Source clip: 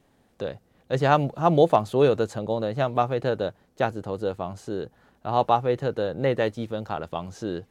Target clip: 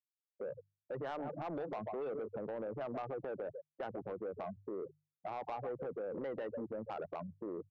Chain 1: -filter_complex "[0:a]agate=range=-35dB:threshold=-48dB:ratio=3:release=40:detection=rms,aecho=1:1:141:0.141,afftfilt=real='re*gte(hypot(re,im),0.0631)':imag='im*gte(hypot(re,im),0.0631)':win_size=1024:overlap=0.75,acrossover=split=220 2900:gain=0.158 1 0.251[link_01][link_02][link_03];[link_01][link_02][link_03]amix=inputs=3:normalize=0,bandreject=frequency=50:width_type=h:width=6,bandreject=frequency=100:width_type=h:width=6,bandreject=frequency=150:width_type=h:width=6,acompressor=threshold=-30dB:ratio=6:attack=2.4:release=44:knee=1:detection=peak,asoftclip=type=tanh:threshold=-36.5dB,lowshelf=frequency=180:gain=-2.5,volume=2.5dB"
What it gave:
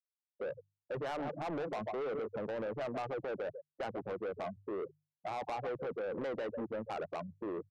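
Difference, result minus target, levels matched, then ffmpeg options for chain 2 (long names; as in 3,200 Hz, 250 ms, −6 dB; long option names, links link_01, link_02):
downward compressor: peak gain reduction −6.5 dB
-filter_complex "[0:a]agate=range=-35dB:threshold=-48dB:ratio=3:release=40:detection=rms,aecho=1:1:141:0.141,afftfilt=real='re*gte(hypot(re,im),0.0631)':imag='im*gte(hypot(re,im),0.0631)':win_size=1024:overlap=0.75,acrossover=split=220 2900:gain=0.158 1 0.251[link_01][link_02][link_03];[link_01][link_02][link_03]amix=inputs=3:normalize=0,bandreject=frequency=50:width_type=h:width=6,bandreject=frequency=100:width_type=h:width=6,bandreject=frequency=150:width_type=h:width=6,acompressor=threshold=-38dB:ratio=6:attack=2.4:release=44:knee=1:detection=peak,asoftclip=type=tanh:threshold=-36.5dB,lowshelf=frequency=180:gain=-2.5,volume=2.5dB"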